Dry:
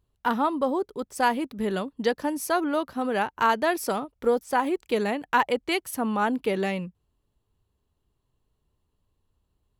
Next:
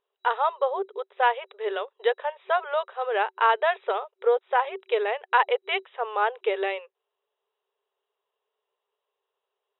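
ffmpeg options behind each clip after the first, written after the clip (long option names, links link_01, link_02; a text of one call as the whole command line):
ffmpeg -i in.wav -af "afftfilt=real='re*between(b*sr/4096,380,3900)':imag='im*between(b*sr/4096,380,3900)':win_size=4096:overlap=0.75,volume=1.5dB" out.wav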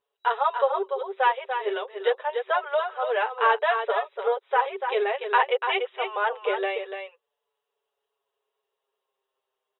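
ffmpeg -i in.wav -filter_complex "[0:a]asplit=2[link_01][link_02];[link_02]aecho=0:1:291:0.447[link_03];[link_01][link_03]amix=inputs=2:normalize=0,asplit=2[link_04][link_05];[link_05]adelay=6.6,afreqshift=-0.26[link_06];[link_04][link_06]amix=inputs=2:normalize=1,volume=3dB" out.wav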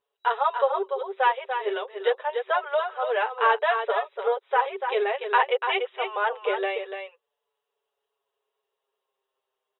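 ffmpeg -i in.wav -af anull out.wav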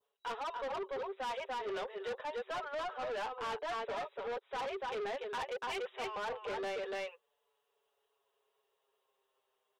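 ffmpeg -i in.wav -af "adynamicequalizer=threshold=0.0126:dfrequency=2300:dqfactor=0.97:tfrequency=2300:tqfactor=0.97:attack=5:release=100:ratio=0.375:range=2.5:mode=cutabove:tftype=bell,areverse,acompressor=threshold=-32dB:ratio=4,areverse,asoftclip=type=tanh:threshold=-37.5dB,volume=2dB" out.wav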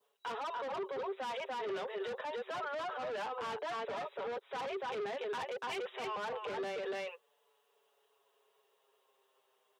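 ffmpeg -i in.wav -filter_complex "[0:a]highpass=140,acrossover=split=200[link_01][link_02];[link_02]alimiter=level_in=14.5dB:limit=-24dB:level=0:latency=1:release=32,volume=-14.5dB[link_03];[link_01][link_03]amix=inputs=2:normalize=0,volume=6.5dB" out.wav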